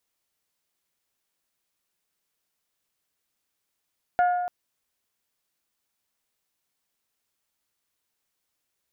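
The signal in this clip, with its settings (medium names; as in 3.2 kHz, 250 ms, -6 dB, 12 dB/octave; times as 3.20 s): glass hit bell, length 0.29 s, lowest mode 715 Hz, decay 1.55 s, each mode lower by 10 dB, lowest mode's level -16.5 dB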